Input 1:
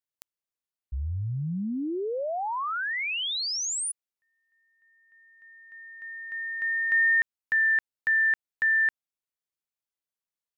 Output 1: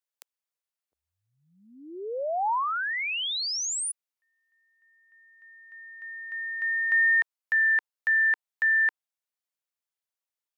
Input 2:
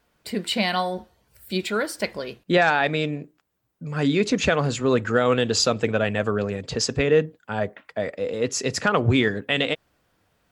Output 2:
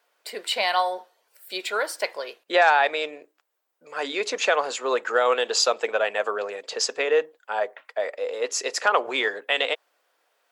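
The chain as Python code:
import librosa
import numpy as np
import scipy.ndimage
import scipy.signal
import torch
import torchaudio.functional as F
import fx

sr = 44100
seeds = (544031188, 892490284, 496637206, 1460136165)

y = scipy.signal.sosfilt(scipy.signal.butter(4, 460.0, 'highpass', fs=sr, output='sos'), x)
y = fx.dynamic_eq(y, sr, hz=910.0, q=2.1, threshold_db=-41.0, ratio=4.0, max_db=5)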